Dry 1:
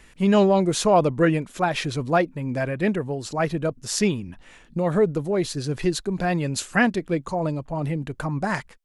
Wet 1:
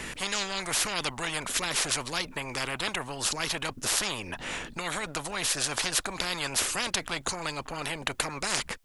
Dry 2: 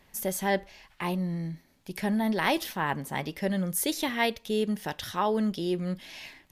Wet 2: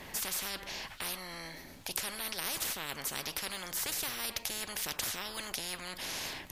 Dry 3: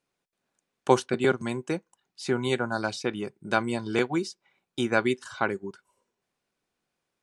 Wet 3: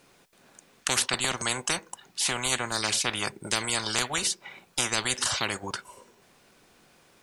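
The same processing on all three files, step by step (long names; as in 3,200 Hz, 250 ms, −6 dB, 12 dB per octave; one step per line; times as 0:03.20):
every bin compressed towards the loudest bin 10 to 1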